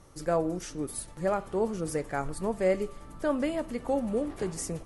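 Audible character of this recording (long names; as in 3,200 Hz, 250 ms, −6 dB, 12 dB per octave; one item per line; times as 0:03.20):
background noise floor −48 dBFS
spectral slope −4.5 dB per octave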